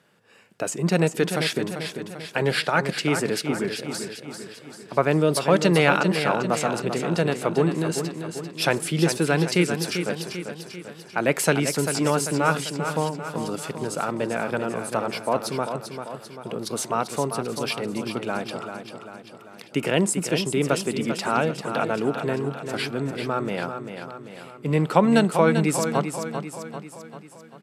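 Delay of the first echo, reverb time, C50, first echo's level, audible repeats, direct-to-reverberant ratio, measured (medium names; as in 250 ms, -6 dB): 393 ms, no reverb, no reverb, -8.0 dB, 5, no reverb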